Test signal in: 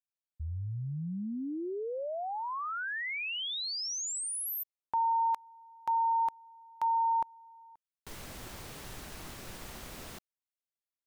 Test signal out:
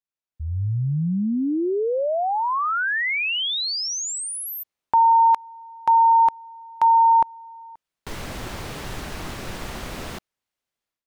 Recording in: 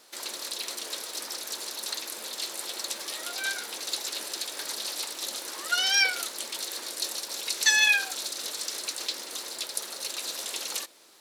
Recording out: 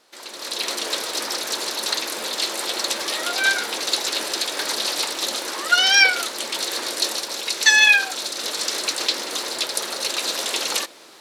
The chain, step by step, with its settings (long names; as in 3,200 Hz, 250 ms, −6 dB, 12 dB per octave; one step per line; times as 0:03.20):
low-pass filter 3,900 Hz 6 dB per octave
automatic gain control gain up to 13.5 dB